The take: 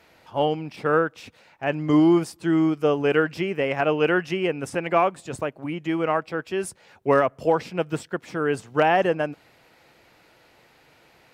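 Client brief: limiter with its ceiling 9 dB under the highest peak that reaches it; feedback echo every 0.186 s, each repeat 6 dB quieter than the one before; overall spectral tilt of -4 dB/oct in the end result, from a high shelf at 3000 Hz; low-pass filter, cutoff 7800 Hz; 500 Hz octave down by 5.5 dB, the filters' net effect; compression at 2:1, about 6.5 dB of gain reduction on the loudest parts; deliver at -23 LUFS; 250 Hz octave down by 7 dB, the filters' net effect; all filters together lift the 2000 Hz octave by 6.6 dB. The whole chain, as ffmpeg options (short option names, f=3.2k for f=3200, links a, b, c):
-af "lowpass=7.8k,equalizer=f=250:t=o:g=-8.5,equalizer=f=500:t=o:g=-5,equalizer=f=2k:t=o:g=7,highshelf=f=3k:g=6.5,acompressor=threshold=-26dB:ratio=2,alimiter=limit=-20dB:level=0:latency=1,aecho=1:1:186|372|558|744|930|1116:0.501|0.251|0.125|0.0626|0.0313|0.0157,volume=8dB"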